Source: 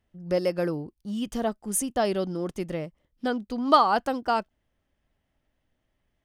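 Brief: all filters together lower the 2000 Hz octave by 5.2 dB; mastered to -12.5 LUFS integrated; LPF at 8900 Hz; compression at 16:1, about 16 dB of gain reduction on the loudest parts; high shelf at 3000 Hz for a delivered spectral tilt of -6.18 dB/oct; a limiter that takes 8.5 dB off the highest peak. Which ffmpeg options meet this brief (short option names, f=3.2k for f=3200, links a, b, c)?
-af "lowpass=8.9k,equalizer=f=2k:t=o:g=-5,highshelf=f=3k:g=-8.5,acompressor=threshold=-30dB:ratio=16,volume=26dB,alimiter=limit=-3dB:level=0:latency=1"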